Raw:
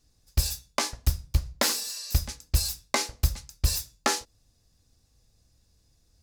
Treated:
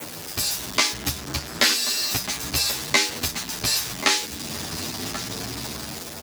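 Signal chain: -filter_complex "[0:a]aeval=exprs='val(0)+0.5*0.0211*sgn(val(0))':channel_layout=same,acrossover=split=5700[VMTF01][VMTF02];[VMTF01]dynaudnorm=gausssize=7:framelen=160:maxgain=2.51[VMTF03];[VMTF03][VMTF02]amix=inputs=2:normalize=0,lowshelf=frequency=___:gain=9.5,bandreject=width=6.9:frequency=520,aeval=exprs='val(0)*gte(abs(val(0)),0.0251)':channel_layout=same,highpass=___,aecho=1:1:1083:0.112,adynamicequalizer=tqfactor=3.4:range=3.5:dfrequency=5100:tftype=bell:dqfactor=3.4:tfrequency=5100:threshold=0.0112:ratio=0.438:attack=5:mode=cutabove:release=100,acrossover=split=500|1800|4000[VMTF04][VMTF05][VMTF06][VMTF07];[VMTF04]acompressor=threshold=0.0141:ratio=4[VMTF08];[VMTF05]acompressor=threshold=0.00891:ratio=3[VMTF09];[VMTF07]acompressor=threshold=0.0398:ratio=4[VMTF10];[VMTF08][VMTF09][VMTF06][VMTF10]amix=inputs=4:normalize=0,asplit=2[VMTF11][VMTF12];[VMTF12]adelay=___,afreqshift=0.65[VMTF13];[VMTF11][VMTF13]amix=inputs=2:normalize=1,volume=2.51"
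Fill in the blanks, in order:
430, 250, 10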